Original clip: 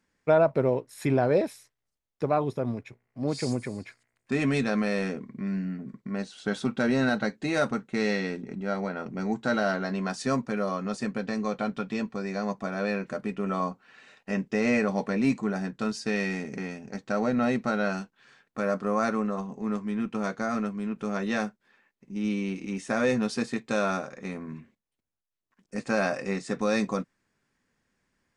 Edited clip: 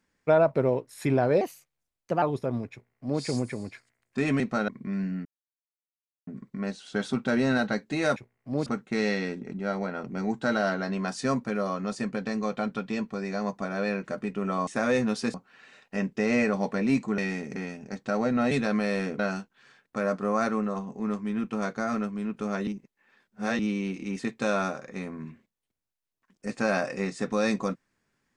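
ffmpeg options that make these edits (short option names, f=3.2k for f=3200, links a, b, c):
-filter_complex "[0:a]asplit=16[a][b][c][d][e][f][g][h][i][j][k][l][m][n][o][p];[a]atrim=end=1.414[q];[b]atrim=start=1.41:end=2.36,asetpts=PTS-STARTPTS,asetrate=51597,aresample=44100[r];[c]atrim=start=2.356:end=4.542[s];[d]atrim=start=17.528:end=17.812[t];[e]atrim=start=5.218:end=5.79,asetpts=PTS-STARTPTS,afade=t=out:st=0.568:d=0.004:c=hsin,apad=pad_dur=1.02[u];[f]atrim=start=5.79:end=7.682,asetpts=PTS-STARTPTS,afade=t=in:d=0.004:c=hsin[v];[g]atrim=start=2.858:end=3.362[w];[h]atrim=start=7.678:end=13.692[x];[i]atrim=start=22.808:end=23.482[y];[j]atrim=start=13.688:end=15.532[z];[k]atrim=start=16.198:end=17.532[aa];[l]atrim=start=4.538:end=5.222[ab];[m]atrim=start=17.808:end=21.292[ac];[n]atrim=start=21.288:end=22.212,asetpts=PTS-STARTPTS,areverse[ad];[o]atrim=start=22.208:end=22.812[ae];[p]atrim=start=23.478[af];[q][r]acrossfade=d=0.004:c1=hsin:c2=hsin[ag];[ag][s]acrossfade=d=0.004:c1=hsin:c2=hsin[ah];[ah][t]acrossfade=d=0.004:c1=hsin:c2=hsin[ai];[u][v]concat=n=2:v=0:a=1[aj];[ai][aj]acrossfade=d=0.004:c1=hsin:c2=hsin[ak];[ak][w]acrossfade=d=0.004:c1=hsin:c2=hsin[al];[al][x]acrossfade=d=0.004:c1=hsin:c2=hsin[am];[am][y]acrossfade=d=0.004:c1=hsin:c2=hsin[an];[an][z]acrossfade=d=0.004:c1=hsin:c2=hsin[ao];[ao][aa]acrossfade=d=0.004:c1=hsin:c2=hsin[ap];[ap][ab]acrossfade=d=0.004:c1=hsin:c2=hsin[aq];[aq][ac]acrossfade=d=0.004:c1=hsin:c2=hsin[ar];[ar][ad]acrossfade=d=0.004:c1=hsin:c2=hsin[as];[as][ae]acrossfade=d=0.004:c1=hsin:c2=hsin[at];[at][af]acrossfade=d=0.004:c1=hsin:c2=hsin"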